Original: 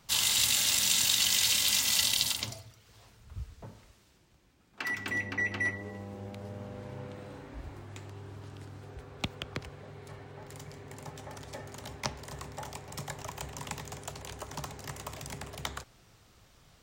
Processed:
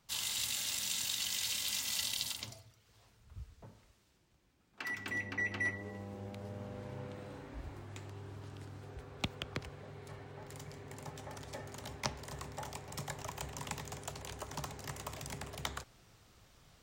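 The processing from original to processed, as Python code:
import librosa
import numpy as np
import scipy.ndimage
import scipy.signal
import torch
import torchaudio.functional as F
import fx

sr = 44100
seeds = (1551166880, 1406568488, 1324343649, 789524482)

y = fx.rider(x, sr, range_db=4, speed_s=2.0)
y = y * 10.0 ** (-6.5 / 20.0)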